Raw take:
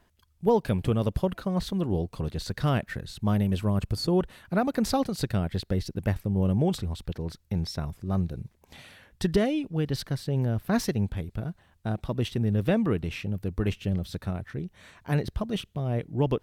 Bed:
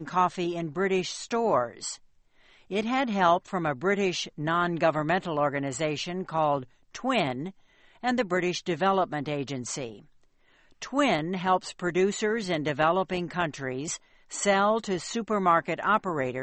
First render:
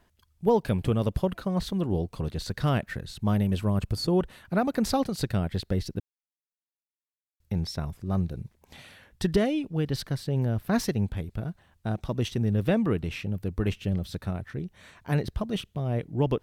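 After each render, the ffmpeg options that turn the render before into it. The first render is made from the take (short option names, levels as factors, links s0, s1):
-filter_complex "[0:a]asettb=1/sr,asplit=3[s0][s1][s2];[s0]atrim=end=11.924[s3];[s1]atrim=start=11.92:end=12.5,asetpts=PTS-STARTPTS,afade=t=in:d=0.004:c=qsin,afade=t=out:st=0.576:d=0.004:c=qsin,equalizer=f=6100:t=o:w=0.37:g=6[s4];[s2]atrim=start=12.496[s5];[s3][s4]acrossfade=d=0.004:c1=hsin:c2=qsin[s6];[s6][s5]acrossfade=d=0.004:c1=qsin:c2=hsin,asplit=3[s7][s8][s9];[s7]atrim=end=6,asetpts=PTS-STARTPTS,afade=t=out:st=5.996:d=0.004:c=hsin[s10];[s8]atrim=start=6:end=7.4,asetpts=PTS-STARTPTS,volume=0[s11];[s9]atrim=start=7.4,asetpts=PTS-STARTPTS,afade=t=in:d=0.004:c=hsin[s12];[s10][s11][s12]concat=n=3:v=0:a=1"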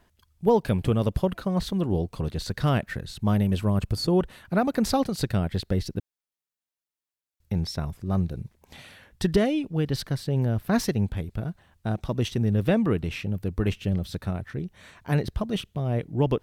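-af "volume=1.26"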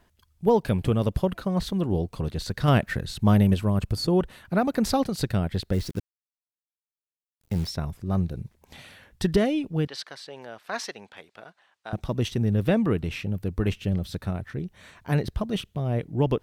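-filter_complex "[0:a]asplit=3[s0][s1][s2];[s0]afade=t=out:st=5.72:d=0.02[s3];[s1]acrusher=bits=8:dc=4:mix=0:aa=0.000001,afade=t=in:st=5.72:d=0.02,afade=t=out:st=7.69:d=0.02[s4];[s2]afade=t=in:st=7.69:d=0.02[s5];[s3][s4][s5]amix=inputs=3:normalize=0,asettb=1/sr,asplit=3[s6][s7][s8];[s6]atrim=end=9.874[s9];[s7]atrim=start=9.87:end=11.93,asetpts=PTS-STARTPTS,afade=t=in:d=0.004:c=qsin,afade=t=out:st=2.056:d=0.004:c=qsin,highpass=760,lowpass=6500[s10];[s8]atrim=start=11.926[s11];[s9][s10]acrossfade=d=0.004:c1=hsin:c2=qsin[s12];[s12][s11]acrossfade=d=0.004:c1=qsin:c2=hsin,asplit=3[s13][s14][s15];[s13]atrim=end=2.682[s16];[s14]atrim=start=2.678:end=3.542,asetpts=PTS-STARTPTS,volume=1.58[s17];[s15]atrim=start=3.538[s18];[s16][s17]acrossfade=d=0.004:c1=hsin:c2=hsin[s19];[s19][s18]acrossfade=d=0.004:c1=hsin:c2=hsin"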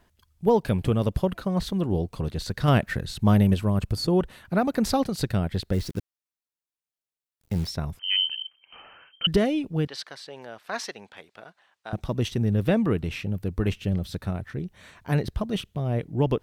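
-filter_complex "[0:a]asettb=1/sr,asplit=3[s0][s1][s2];[s0]atrim=end=7.994[s3];[s1]atrim=start=7.99:end=9.27,asetpts=PTS-STARTPTS,afade=t=in:d=0.004:c=qsin,afade=t=out:st=1.276:d=0.004:c=qsin,lowpass=f=2700:t=q:w=0.5098,lowpass=f=2700:t=q:w=0.6013,lowpass=f=2700:t=q:w=0.9,lowpass=f=2700:t=q:w=2.563,afreqshift=-3200[s4];[s2]atrim=start=9.266[s5];[s3][s4]acrossfade=d=0.004:c1=hsin:c2=qsin[s6];[s6][s5]acrossfade=d=0.004:c1=qsin:c2=hsin"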